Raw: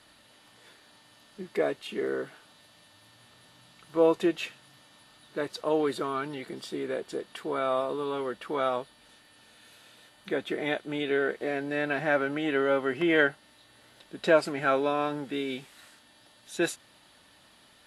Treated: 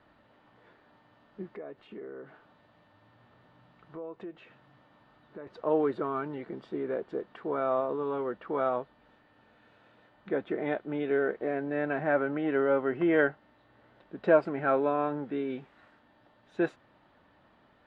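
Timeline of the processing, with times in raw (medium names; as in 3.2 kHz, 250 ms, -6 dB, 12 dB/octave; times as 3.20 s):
1.51–5.47 s: compression 4:1, threshold -41 dBFS
whole clip: low-pass 1.4 kHz 12 dB/octave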